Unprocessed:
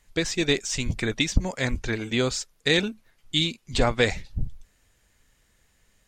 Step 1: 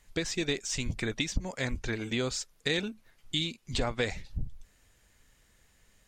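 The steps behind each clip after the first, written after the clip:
downward compressor 2 to 1, threshold −33 dBFS, peak gain reduction 11 dB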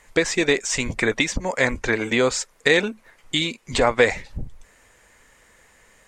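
graphic EQ with 10 bands 250 Hz +4 dB, 500 Hz +10 dB, 1,000 Hz +10 dB, 2,000 Hz +10 dB, 8,000 Hz +8 dB
level +2.5 dB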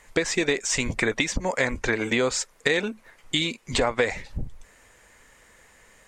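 downward compressor 3 to 1, threshold −20 dBFS, peak gain reduction 7.5 dB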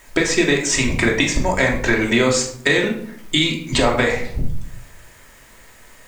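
in parallel at −10 dB: bit-depth reduction 8 bits, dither triangular
on the sum: rectangular room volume 1,000 cubic metres, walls furnished, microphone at 2.8 metres
level +1.5 dB

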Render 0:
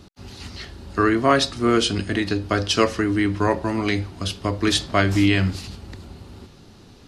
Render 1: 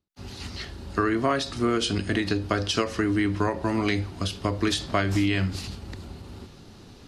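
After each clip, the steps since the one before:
downward compressor 5 to 1, threshold −20 dBFS, peak gain reduction 8.5 dB
every ending faded ahead of time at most 150 dB per second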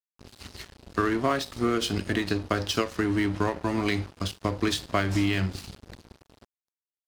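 dead-zone distortion −36.5 dBFS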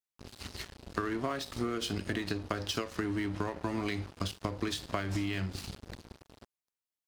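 downward compressor, threshold −30 dBFS, peak gain reduction 10.5 dB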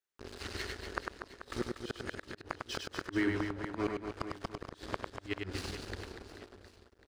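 graphic EQ with 15 bands 160 Hz −9 dB, 400 Hz +8 dB, 1,600 Hz +7 dB, 16,000 Hz −11 dB
gate with flip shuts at −21 dBFS, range −41 dB
reverse bouncing-ball delay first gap 100 ms, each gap 1.4×, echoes 5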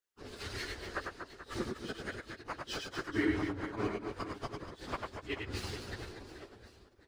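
random phases in long frames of 50 ms

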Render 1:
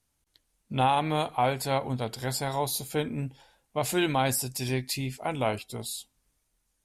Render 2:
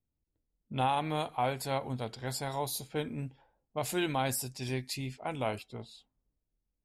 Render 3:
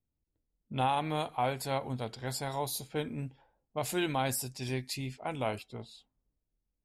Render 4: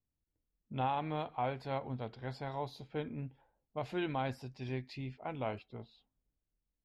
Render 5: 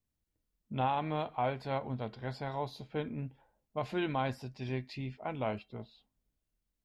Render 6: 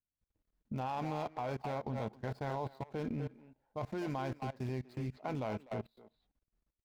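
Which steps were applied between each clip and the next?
low-pass that shuts in the quiet parts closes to 430 Hz, open at −26.5 dBFS; level −5.5 dB
no processing that can be heard
high-frequency loss of the air 270 metres; level −3.5 dB
tuned comb filter 210 Hz, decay 0.16 s, harmonics odd, mix 50%; level +8 dB
running median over 15 samples; far-end echo of a speakerphone 250 ms, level −7 dB; output level in coarse steps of 21 dB; level +5 dB

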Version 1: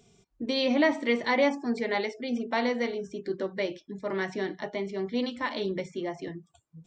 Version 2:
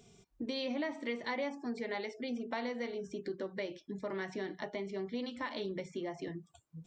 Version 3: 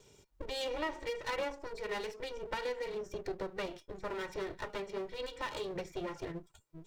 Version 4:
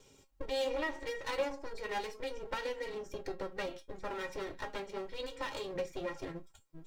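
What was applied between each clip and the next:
downward compressor 3 to 1, threshold −38 dBFS, peak gain reduction 15 dB
lower of the sound and its delayed copy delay 2.1 ms; level +2 dB
tuned comb filter 270 Hz, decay 0.15 s, harmonics all, mix 80%; level +9 dB

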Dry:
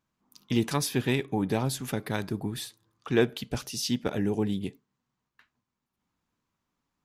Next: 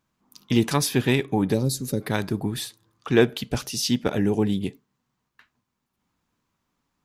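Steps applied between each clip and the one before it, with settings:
gain on a spectral selection 0:01.54–0:02.01, 600–3,700 Hz −16 dB
level +5.5 dB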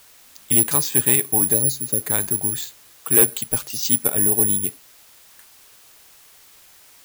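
bad sample-rate conversion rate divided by 4×, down filtered, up zero stuff
bit-depth reduction 8 bits, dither triangular
parametric band 200 Hz −5 dB 1.6 octaves
level −1.5 dB

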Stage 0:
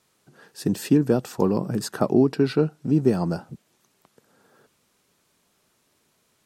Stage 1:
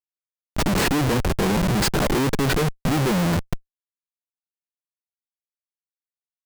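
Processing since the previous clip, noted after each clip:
upward compression, threshold −41 dBFS
comparator with hysteresis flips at −32 dBFS
level +5.5 dB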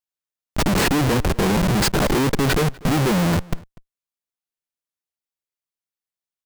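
slap from a distant wall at 42 metres, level −23 dB
level +2 dB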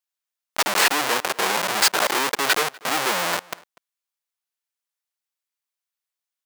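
high-pass filter 780 Hz 12 dB per octave
level +4 dB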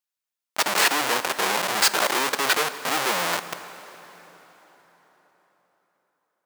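dense smooth reverb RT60 4.5 s, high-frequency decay 0.75×, DRR 12 dB
level −1.5 dB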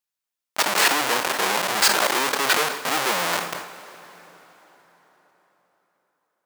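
level that may fall only so fast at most 78 dB per second
level +1 dB

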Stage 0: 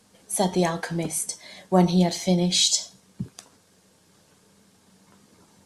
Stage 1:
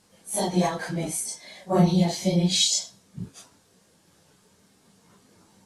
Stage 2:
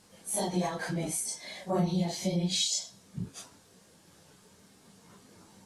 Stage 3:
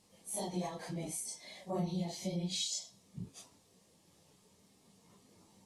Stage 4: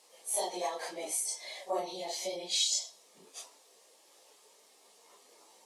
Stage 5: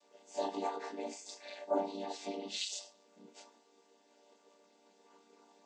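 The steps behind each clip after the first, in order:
random phases in long frames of 100 ms; level −1.5 dB
downward compressor 2 to 1, threshold −35 dBFS, peak gain reduction 11.5 dB; level +1.5 dB
parametric band 1,500 Hz −13.5 dB 0.3 octaves; level −7.5 dB
high-pass filter 430 Hz 24 dB per octave; level +7.5 dB
channel vocoder with a chord as carrier minor triad, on G3; level −2.5 dB

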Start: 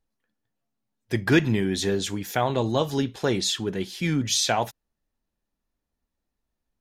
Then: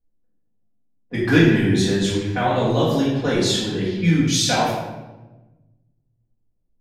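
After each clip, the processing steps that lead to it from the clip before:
low-pass that shuts in the quiet parts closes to 510 Hz, open at −21.5 dBFS
convolution reverb RT60 1.1 s, pre-delay 4 ms, DRR −9 dB
level −4.5 dB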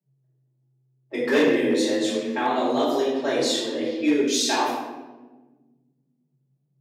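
hard clipping −10 dBFS, distortion −18 dB
frequency shifter +130 Hz
level −3.5 dB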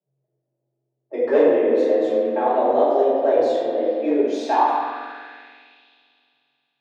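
spring reverb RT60 2.7 s, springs 44 ms, chirp 30 ms, DRR 3.5 dB
band-pass filter sweep 590 Hz → 3,000 Hz, 0:04.31–0:05.88
level +8.5 dB

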